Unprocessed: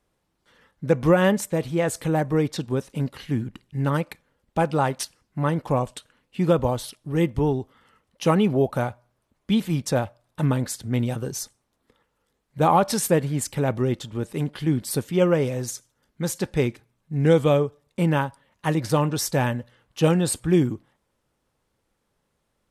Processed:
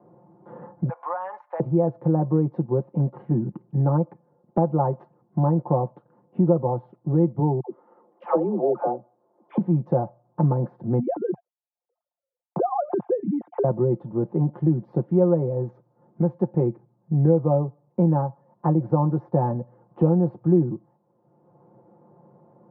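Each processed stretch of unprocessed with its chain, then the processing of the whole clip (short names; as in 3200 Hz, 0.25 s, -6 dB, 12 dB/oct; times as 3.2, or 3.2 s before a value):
0.89–1.6 HPF 890 Hz 24 dB/oct + tilt +4 dB/oct + compressor 4:1, threshold -27 dBFS
7.6–9.58 HPF 290 Hz 24 dB/oct + dispersion lows, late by 0.106 s, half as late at 660 Hz
10.99–13.64 sine-wave speech + gate -54 dBFS, range -34 dB + compressor, threshold -24 dBFS
whole clip: elliptic band-pass 120–890 Hz, stop band 80 dB; comb 5.7 ms, depth 73%; three-band squash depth 70%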